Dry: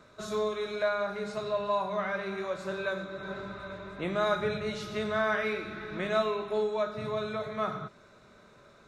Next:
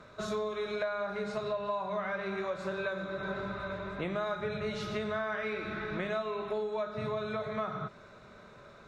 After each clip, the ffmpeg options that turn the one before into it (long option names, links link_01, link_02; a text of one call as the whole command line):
ffmpeg -i in.wav -af "lowpass=frequency=3600:poles=1,equalizer=frequency=300:width=1.9:gain=-3.5,acompressor=threshold=-36dB:ratio=5,volume=4.5dB" out.wav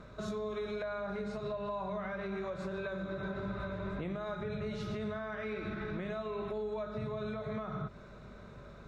ffmpeg -i in.wav -af "lowshelf=frequency=360:gain=10,alimiter=level_in=3dB:limit=-24dB:level=0:latency=1:release=121,volume=-3dB,aeval=exprs='val(0)+0.00251*(sin(2*PI*50*n/s)+sin(2*PI*2*50*n/s)/2+sin(2*PI*3*50*n/s)/3+sin(2*PI*4*50*n/s)/4+sin(2*PI*5*50*n/s)/5)':channel_layout=same,volume=-3dB" out.wav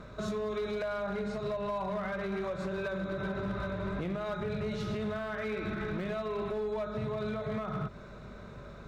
ffmpeg -i in.wav -af "volume=33dB,asoftclip=hard,volume=-33dB,volume=4dB" out.wav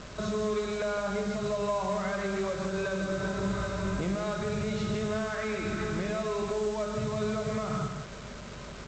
ffmpeg -i in.wav -af "aresample=16000,acrusher=bits=7:mix=0:aa=0.000001,aresample=44100,aecho=1:1:155:0.473,volume=2.5dB" out.wav